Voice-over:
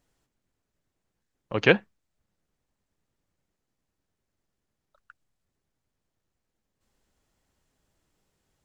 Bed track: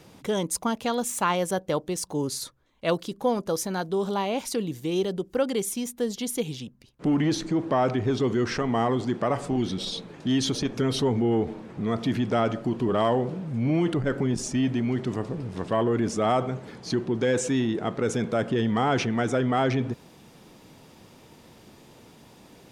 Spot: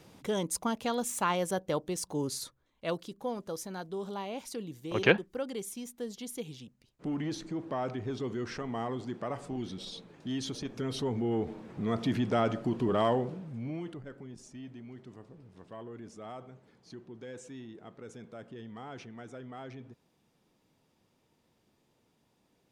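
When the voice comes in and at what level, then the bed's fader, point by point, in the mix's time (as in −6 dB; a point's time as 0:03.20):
3.40 s, −4.5 dB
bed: 0:02.36 −5 dB
0:03.26 −11 dB
0:10.60 −11 dB
0:11.96 −4 dB
0:13.10 −4 dB
0:14.16 −21 dB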